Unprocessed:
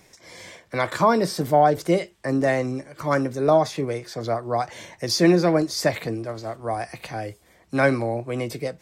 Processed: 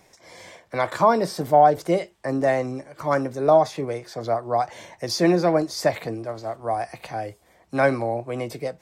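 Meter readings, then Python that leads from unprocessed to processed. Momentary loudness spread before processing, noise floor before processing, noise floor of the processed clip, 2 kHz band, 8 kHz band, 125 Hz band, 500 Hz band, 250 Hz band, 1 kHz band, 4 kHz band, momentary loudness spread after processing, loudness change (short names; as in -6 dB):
14 LU, -57 dBFS, -58 dBFS, -2.0 dB, -3.5 dB, -3.5 dB, +0.5 dB, -2.5 dB, +2.5 dB, -3.5 dB, 13 LU, 0.0 dB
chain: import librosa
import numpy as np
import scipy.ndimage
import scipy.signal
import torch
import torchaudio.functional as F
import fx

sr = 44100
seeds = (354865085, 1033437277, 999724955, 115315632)

y = fx.peak_eq(x, sr, hz=760.0, db=6.5, octaves=1.2)
y = F.gain(torch.from_numpy(y), -3.5).numpy()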